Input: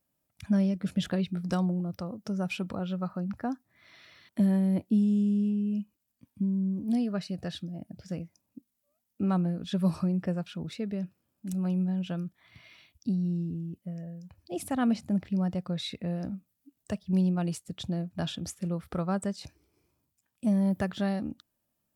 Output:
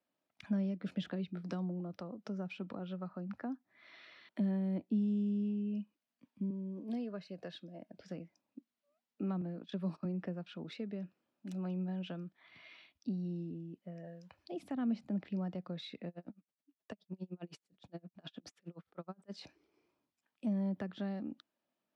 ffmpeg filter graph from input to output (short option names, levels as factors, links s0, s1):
-filter_complex "[0:a]asettb=1/sr,asplit=3[s0][s1][s2];[s0]atrim=end=6.504[s3];[s1]atrim=start=6.5:end=8,asetpts=PTS-STARTPTS,afade=t=in:d=0.004:c=qsin,afade=t=out:st=1.496:d=0.004:c=qsin,highpass=180,aecho=1:1:1.9:0.37,atrim=end_sample=66150[s4];[s2]atrim=start=7.996[s5];[s3][s4]acrossfade=d=0.004:c1=hsin:c2=qsin[s6];[s6][s5]acrossfade=d=0.004:c1=qsin:c2=hsin,asettb=1/sr,asplit=3[s7][s8][s9];[s7]atrim=end=9.414[s10];[s8]atrim=start=9.41:end=10.05,asetpts=PTS-STARTPTS,afade=t=in:d=0.004:c=qsin,afade=t=out:st=0.636:d=0.004:c=qsin,highpass=140,agate=range=0.0708:threshold=0.0112:ratio=16:release=100:detection=peak,acompressor=mode=upward:threshold=0.0126:ratio=2.5:attack=3.2:release=140:knee=2.83:detection=peak[s11];[s9]atrim=start=10.046[s12];[s10][s11]acrossfade=d=0.004:c1=hsin:c2=qsin[s13];[s13][s12]acrossfade=d=0.004:c1=qsin:c2=hsin,asettb=1/sr,asplit=3[s14][s15][s16];[s14]atrim=end=14.044[s17];[s15]atrim=start=14.04:end=14.52,asetpts=PTS-STARTPTS,afade=t=in:d=0.004:c=qsin,afade=t=out:st=0.476:d=0.004:c=qsin,equalizer=f=230:w=0.58:g=-8,acontrast=76[s18];[s16]atrim=start=14.516[s19];[s17][s18]acrossfade=d=0.004:c1=hsin:c2=qsin[s20];[s20][s19]acrossfade=d=0.004:c1=qsin:c2=hsin,asettb=1/sr,asplit=3[s21][s22][s23];[s21]atrim=end=16.084[s24];[s22]atrim=start=16.08:end=19.32,asetpts=PTS-STARTPTS,afade=t=in:d=0.004:c=qsin,afade=t=out:st=3.236:d=0.004:c=qsin,acompressor=threshold=0.0447:ratio=5:attack=3.2:release=140:knee=1:detection=peak,aeval=exprs='val(0)*pow(10,-37*(0.5-0.5*cos(2*PI*9.6*n/s))/20)':c=same[s25];[s23]atrim=start=19.316[s26];[s24][s25]acrossfade=d=0.004:c1=hsin:c2=qsin[s27];[s27][s26]acrossfade=d=0.004:c1=qsin:c2=hsin,acrossover=split=220 4700:gain=0.0794 1 0.0794[s28][s29][s30];[s28][s29][s30]amix=inputs=3:normalize=0,acrossover=split=290[s31][s32];[s32]acompressor=threshold=0.00562:ratio=5[s33];[s31][s33]amix=inputs=2:normalize=0,volume=0.891"